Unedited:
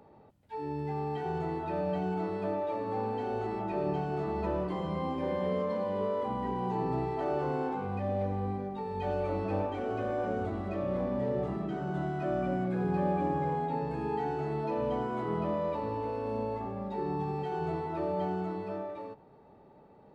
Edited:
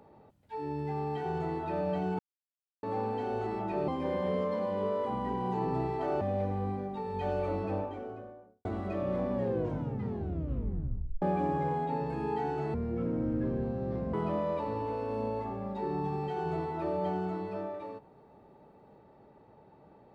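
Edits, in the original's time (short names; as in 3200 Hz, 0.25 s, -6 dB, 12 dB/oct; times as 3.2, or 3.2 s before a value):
2.19–2.83 mute
3.88–5.06 cut
7.39–8.02 cut
9.2–10.46 studio fade out
11.14 tape stop 1.89 s
14.55–15.29 speed 53%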